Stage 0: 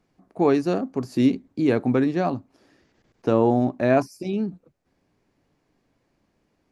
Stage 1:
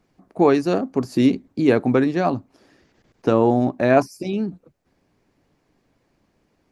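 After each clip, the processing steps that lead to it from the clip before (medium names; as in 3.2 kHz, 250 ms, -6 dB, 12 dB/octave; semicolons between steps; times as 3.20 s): harmonic-percussive split percussive +4 dB; trim +1.5 dB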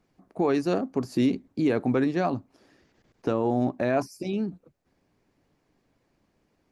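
peak limiter -10 dBFS, peak gain reduction 6.5 dB; trim -4.5 dB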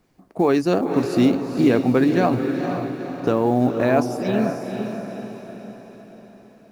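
companded quantiser 8-bit; echo that smears into a reverb 481 ms, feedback 50%, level -6 dB; trim +6 dB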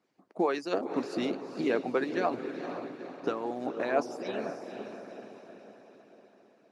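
harmonic-percussive split harmonic -13 dB; band-pass 260–6600 Hz; trim -5.5 dB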